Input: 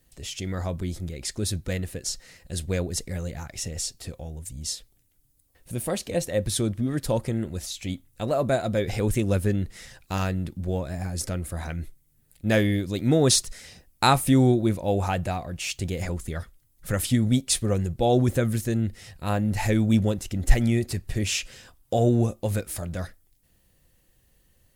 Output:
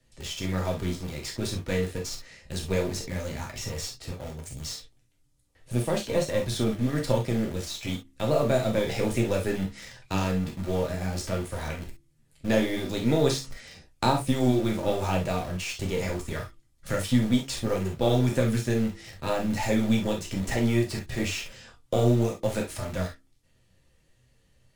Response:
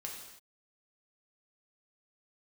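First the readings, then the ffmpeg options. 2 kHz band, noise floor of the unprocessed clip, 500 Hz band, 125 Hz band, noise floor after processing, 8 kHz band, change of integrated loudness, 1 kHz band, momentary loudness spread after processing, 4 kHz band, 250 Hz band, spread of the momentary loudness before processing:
-1.0 dB, -65 dBFS, 0.0 dB, -3.0 dB, -65 dBFS, -7.0 dB, -2.0 dB, -2.5 dB, 12 LU, -2.5 dB, -1.5 dB, 14 LU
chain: -filter_complex "[0:a]lowpass=6.9k,flanger=delay=7.9:depth=7.4:regen=52:speed=1.4:shape=sinusoidal,acrossover=split=180|750|1700|3800[a][b][c][d][e];[a]acompressor=threshold=-40dB:ratio=4[f];[b]acompressor=threshold=-29dB:ratio=4[g];[c]acompressor=threshold=-46dB:ratio=4[h];[d]acompressor=threshold=-47dB:ratio=4[i];[e]acompressor=threshold=-45dB:ratio=4[j];[f][g][h][i][j]amix=inputs=5:normalize=0,asplit=2[k][l];[l]acrusher=bits=4:dc=4:mix=0:aa=0.000001,volume=-4dB[m];[k][m]amix=inputs=2:normalize=0,bandreject=f=67:t=h:w=4,bandreject=f=134:t=h:w=4,bandreject=f=201:t=h:w=4,bandreject=f=268:t=h:w=4,bandreject=f=335:t=h:w=4[n];[1:a]atrim=start_sample=2205,atrim=end_sample=3528,asetrate=48510,aresample=44100[o];[n][o]afir=irnorm=-1:irlink=0,volume=8.5dB"

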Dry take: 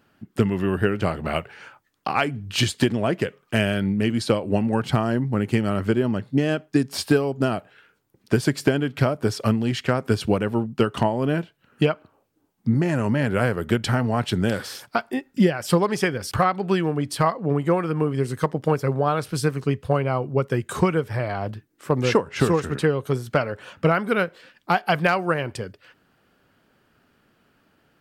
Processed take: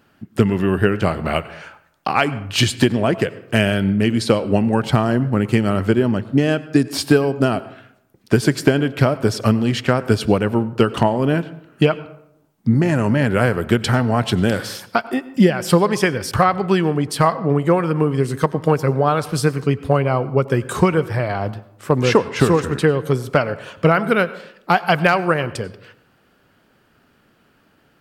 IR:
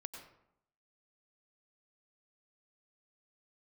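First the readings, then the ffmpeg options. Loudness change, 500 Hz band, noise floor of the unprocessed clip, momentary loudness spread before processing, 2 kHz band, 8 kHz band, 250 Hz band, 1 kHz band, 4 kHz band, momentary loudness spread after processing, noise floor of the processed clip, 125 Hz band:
+5.0 dB, +5.0 dB, -67 dBFS, 6 LU, +5.0 dB, +5.0 dB, +5.0 dB, +5.0 dB, +5.0 dB, 6 LU, -58 dBFS, +5.0 dB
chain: -filter_complex "[0:a]asplit=2[a][b];[1:a]atrim=start_sample=2205[c];[b][c]afir=irnorm=-1:irlink=0,volume=-5.5dB[d];[a][d]amix=inputs=2:normalize=0,volume=2.5dB"

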